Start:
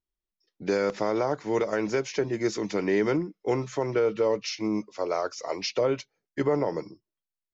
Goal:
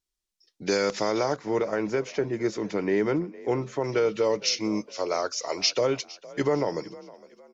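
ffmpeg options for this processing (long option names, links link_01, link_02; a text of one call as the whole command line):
ffmpeg -i in.wav -filter_complex "[0:a]asetnsamples=nb_out_samples=441:pad=0,asendcmd='1.36 equalizer g -5;3.84 equalizer g 9',equalizer=frequency=6200:width_type=o:width=2.2:gain=11,asplit=4[link_01][link_02][link_03][link_04];[link_02]adelay=460,afreqshift=41,volume=-20dB[link_05];[link_03]adelay=920,afreqshift=82,volume=-28.6dB[link_06];[link_04]adelay=1380,afreqshift=123,volume=-37.3dB[link_07];[link_01][link_05][link_06][link_07]amix=inputs=4:normalize=0" out.wav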